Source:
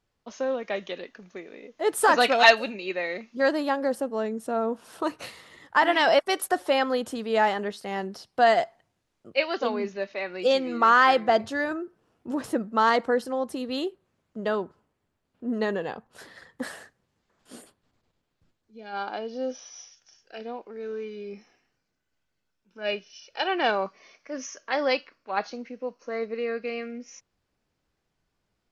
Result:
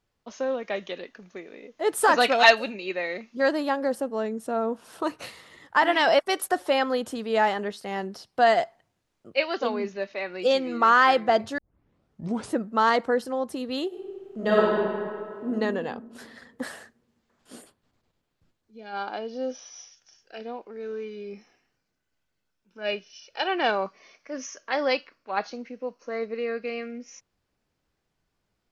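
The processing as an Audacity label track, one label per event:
11.580000	11.580000	tape start 0.96 s
13.870000	15.470000	reverb throw, RT60 2.2 s, DRR -7.5 dB

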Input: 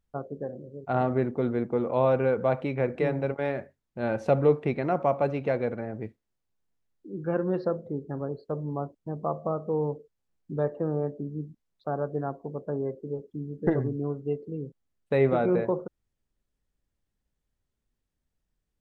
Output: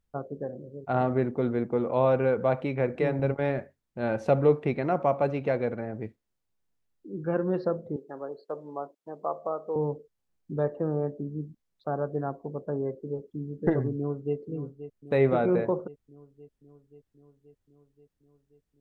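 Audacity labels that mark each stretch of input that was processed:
3.190000	3.590000	low shelf 180 Hz +9 dB
7.960000	9.760000	HPF 440 Hz
13.960000	14.360000	echo throw 0.53 s, feedback 70%, level -12 dB

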